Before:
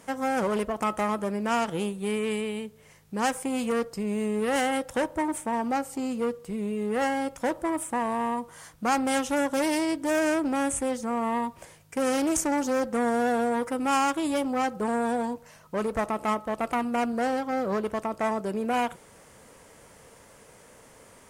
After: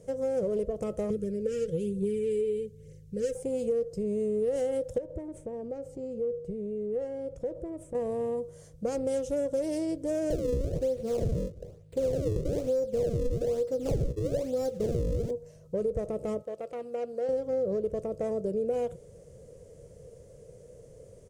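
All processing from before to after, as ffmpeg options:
ffmpeg -i in.wav -filter_complex "[0:a]asettb=1/sr,asplit=3[link_01][link_02][link_03];[link_01]atrim=end=1.104[link_04];[link_02]atrim=start=1.1:end=3.35,asetpts=PTS-STARTPTS,afade=type=in:duration=0.004:curve=qsin,afade=type=out:start_time=2.246:duration=0.004:curve=qsin,aphaser=in_gain=1:out_gain=1:delay=2.7:decay=0.46:speed=1.1:type=triangular,asuperstop=centerf=860:order=8:qfactor=0.95[link_05];[link_03]atrim=start=3.346[link_06];[link_04][link_05]acrossfade=duration=0.004:curve1=hsin:curve2=qsin[link_07];[link_07][link_06]acrossfade=duration=0.004:curve1=qsin:curve2=hsin,asettb=1/sr,asplit=3[link_08][link_09][link_10];[link_08]atrim=end=4.984[link_11];[link_09]atrim=start=4.98:end=7.95,asetpts=PTS-STARTPTS,afade=type=in:duration=0.004:curve=qsin,afade=type=out:start_time=2.966:duration=0.004:curve=qsin,highshelf=frequency=3800:gain=-11.5,acompressor=threshold=-32dB:ratio=4:attack=3.2:release=140:knee=1:detection=peak[link_12];[link_10]atrim=start=7.946[link_13];[link_11][link_12]acrossfade=duration=0.004:curve1=hsin:curve2=qsin[link_14];[link_14][link_13]acrossfade=duration=0.004:curve1=qsin:curve2=hsin,asettb=1/sr,asplit=3[link_15][link_16][link_17];[link_15]atrim=end=10.304[link_18];[link_16]atrim=start=10.3:end=15.31,asetpts=PTS-STARTPTS,afade=type=in:duration=0.004:curve=qsin,afade=type=out:start_time=5.006:duration=0.004:curve=qsin,asplit=2[link_19][link_20];[link_20]adelay=23,volume=-11dB[link_21];[link_19][link_21]amix=inputs=2:normalize=0,atrim=end_sample=220941,acrusher=samples=33:mix=1:aa=0.000001:lfo=1:lforange=52.8:lforate=1.1[link_22];[link_17]atrim=start=15.306[link_23];[link_18][link_22]acrossfade=duration=0.004:curve1=hsin:curve2=qsin[link_24];[link_24][link_23]acrossfade=duration=0.004:curve1=qsin:curve2=hsin,asettb=1/sr,asplit=3[link_25][link_26][link_27];[link_25]atrim=end=16.424[link_28];[link_26]atrim=start=16.42:end=17.29,asetpts=PTS-STARTPTS,afade=type=in:duration=0.004:curve=qsin,afade=type=out:start_time=0.866:duration=0.004:curve=qsin,acrossover=split=4800[link_29][link_30];[link_30]acompressor=threshold=-57dB:ratio=4:attack=1:release=60[link_31];[link_29][link_31]amix=inputs=2:normalize=0,highpass=frequency=850:poles=1[link_32];[link_27]atrim=start=17.286[link_33];[link_28][link_32]acrossfade=duration=0.004:curve1=hsin:curve2=qsin[link_34];[link_34][link_33]acrossfade=duration=0.004:curve1=qsin:curve2=hsin,firequalizer=gain_entry='entry(150,0);entry(240,-16);entry(490,1);entry(850,-28);entry(1400,-28);entry(6300,-15);entry(14000,-24)':delay=0.05:min_phase=1,acompressor=threshold=-33dB:ratio=6,volume=7.5dB" out.wav

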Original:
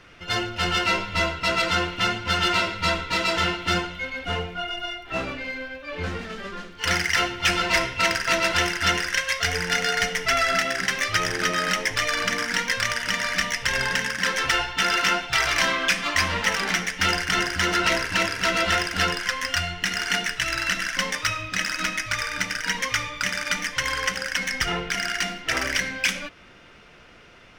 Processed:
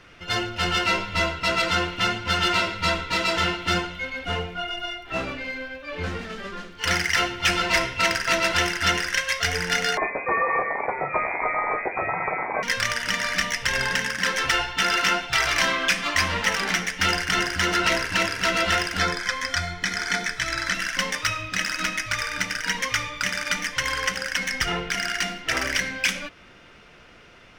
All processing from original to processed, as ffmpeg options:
ffmpeg -i in.wav -filter_complex "[0:a]asettb=1/sr,asplit=3[link_01][link_02][link_03];[link_01]atrim=end=9.974[link_04];[link_02]atrim=start=9.97:end=12.63,asetpts=PTS-STARTPTS,afade=type=in:duration=0.004:curve=qsin,afade=type=out:start_time=2.656:duration=0.004:curve=qsin,lowpass=frequency=2100:width_type=q:width=0.5098,lowpass=frequency=2100:width_type=q:width=0.6013,lowpass=frequency=2100:width_type=q:width=0.9,lowpass=frequency=2100:width_type=q:width=2.563,afreqshift=-2500,asplit=2[link_05][link_06];[link_06]adelay=28,volume=-12dB[link_07];[link_05][link_07]amix=inputs=2:normalize=0,atrim=end_sample=117306[link_08];[link_03]atrim=start=12.626[link_09];[link_04][link_08]acrossfade=duration=0.004:curve1=hsin:curve2=qsin[link_10];[link_10][link_09]acrossfade=duration=0.004:curve1=qsin:curve2=hsin,asettb=1/sr,asplit=3[link_11][link_12][link_13];[link_11]atrim=end=18.994[link_14];[link_12]atrim=start=18.99:end=20.74,asetpts=PTS-STARTPTS,afade=type=in:duration=0.004:curve=qsin,afade=type=out:start_time=1.746:duration=0.004:curve=qsin,acrossover=split=9000[link_15][link_16];[link_16]acompressor=threshold=-50dB:ratio=4:attack=1:release=60[link_17];[link_15][link_17]amix=inputs=2:normalize=0,asuperstop=centerf=2800:order=8:qfactor=7.7[link_18];[link_13]atrim=start=20.736[link_19];[link_14][link_18]acrossfade=duration=0.004:curve1=hsin:curve2=qsin[link_20];[link_20][link_19]acrossfade=duration=0.004:curve1=qsin:curve2=hsin" out.wav

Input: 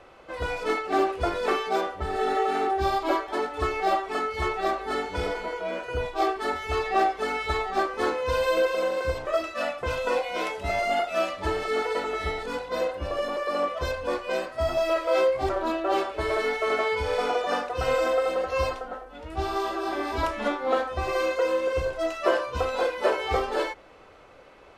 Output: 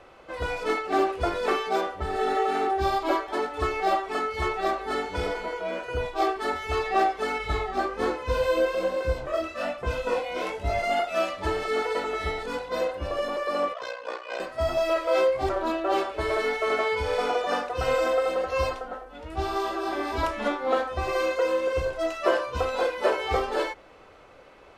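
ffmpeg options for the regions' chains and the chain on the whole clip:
ffmpeg -i in.wav -filter_complex "[0:a]asettb=1/sr,asplit=3[link_01][link_02][link_03];[link_01]atrim=end=7.384[link_04];[link_02]atrim=start=7.38:end=10.84,asetpts=PTS-STARTPTS,afade=type=in:duration=0.004:curve=qsin,afade=type=out:start_time=3.456:duration=0.004:curve=qsin,lowshelf=frequency=300:gain=9,flanger=delay=18.5:depth=6:speed=1.2[link_05];[link_03]atrim=start=10.836[link_06];[link_04][link_05]acrossfade=duration=0.004:curve1=hsin:curve2=qsin[link_07];[link_07][link_06]acrossfade=duration=0.004:curve1=qsin:curve2=hsin,asettb=1/sr,asplit=3[link_08][link_09][link_10];[link_08]atrim=end=13.734[link_11];[link_09]atrim=start=13.73:end=14.4,asetpts=PTS-STARTPTS,afade=type=in:duration=0.004:curve=qsin,afade=type=out:start_time=0.666:duration=0.004:curve=qsin,aeval=exprs='val(0)*sin(2*PI*30*n/s)':channel_layout=same,highpass=580,lowpass=6400[link_12];[link_10]atrim=start=14.396[link_13];[link_11][link_12]acrossfade=duration=0.004:curve1=hsin:curve2=qsin[link_14];[link_14][link_13]acrossfade=duration=0.004:curve1=qsin:curve2=hsin" out.wav

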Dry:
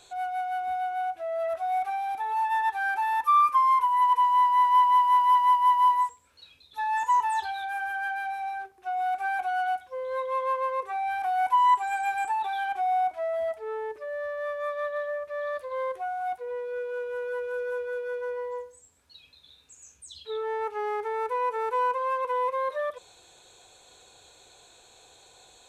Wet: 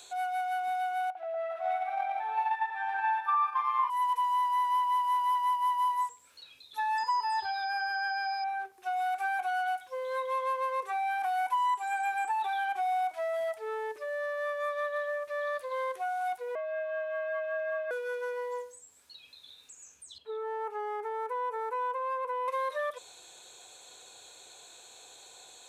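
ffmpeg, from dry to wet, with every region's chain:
ffmpeg -i in.wav -filter_complex "[0:a]asettb=1/sr,asplit=3[link_01][link_02][link_03];[link_01]atrim=end=1.104[link_04];[link_02]atrim=start=1.1:end=3.9,asetpts=PTS-STARTPTS,afade=type=in:duration=0.004:curve=qsin,afade=type=out:start_time=2.796:duration=0.004:curve=qsin,aecho=1:1:50|125|237.5|406.2|659.4:0.794|0.631|0.501|0.398|0.316,atrim=end_sample=123480,agate=range=-7dB:threshold=-24dB:ratio=16:release=100:detection=peak,acrossover=split=270 3400:gain=0.0708 1 0.0794[link_05][link_06][link_07];[link_05][link_06][link_07]amix=inputs=3:normalize=0[link_08];[link_03]atrim=start=3.896[link_09];[link_04][link_08]acrossfade=duration=0.004:curve1=hsin:curve2=qsin[link_10];[link_10][link_09]acrossfade=duration=0.004:curve1=qsin:curve2=hsin,asettb=1/sr,asplit=3[link_11][link_12][link_13];[link_11]atrim=end=6.984[link_14];[link_12]atrim=start=6.98:end=8.44,asetpts=PTS-STARTPTS,afade=type=in:duration=0.004:curve=qsin,afade=type=out:start_time=1.456:duration=0.004:curve=qsin,lowshelf=frequency=160:gain=9,aeval=exprs='val(0)+0.0224*sin(2*PI*5000*n/s)':channel_layout=same[link_15];[link_13]atrim=start=8.436[link_16];[link_14][link_15]acrossfade=duration=0.004:curve1=hsin:curve2=qsin[link_17];[link_17][link_16]acrossfade=duration=0.004:curve1=qsin:curve2=hsin,asettb=1/sr,asplit=3[link_18][link_19][link_20];[link_18]atrim=end=16.554[link_21];[link_19]atrim=start=16.55:end=17.91,asetpts=PTS-STARTPTS,afade=type=in:duration=0.004:curve=qsin,afade=type=out:start_time=1.356:duration=0.004:curve=qsin,acrossover=split=210 2800:gain=0.178 1 0.0708[link_22][link_23][link_24];[link_22][link_23][link_24]amix=inputs=3:normalize=0,afreqshift=140[link_25];[link_20]atrim=start=17.906[link_26];[link_21][link_25]acrossfade=duration=0.004:curve1=hsin:curve2=qsin[link_27];[link_27][link_26]acrossfade=duration=0.004:curve1=qsin:curve2=hsin,asettb=1/sr,asplit=3[link_28][link_29][link_30];[link_28]atrim=end=20.184[link_31];[link_29]atrim=start=20.18:end=22.48,asetpts=PTS-STARTPTS,afade=type=in:duration=0.004:curve=qsin,afade=type=out:start_time=2.296:duration=0.004:curve=qsin,equalizer=frequency=3600:width=0.46:gain=-15,acompressor=threshold=-34dB:ratio=2:attack=3.2:release=140:knee=1:detection=peak,asplit=2[link_32][link_33];[link_33]highpass=frequency=720:poles=1,volume=11dB,asoftclip=type=tanh:threshold=-21.5dB[link_34];[link_32][link_34]amix=inputs=2:normalize=0,lowpass=frequency=2100:poles=1,volume=-6dB[link_35];[link_30]atrim=start=22.476[link_36];[link_31][link_35]acrossfade=duration=0.004:curve1=hsin:curve2=qsin[link_37];[link_37][link_36]acrossfade=duration=0.004:curve1=qsin:curve2=hsin,highpass=frequency=260:poles=1,highshelf=frequency=3100:gain=9.5,acrossover=split=860|2300[link_38][link_39][link_40];[link_38]acompressor=threshold=-35dB:ratio=4[link_41];[link_39]acompressor=threshold=-33dB:ratio=4[link_42];[link_40]acompressor=threshold=-51dB:ratio=4[link_43];[link_41][link_42][link_43]amix=inputs=3:normalize=0" out.wav

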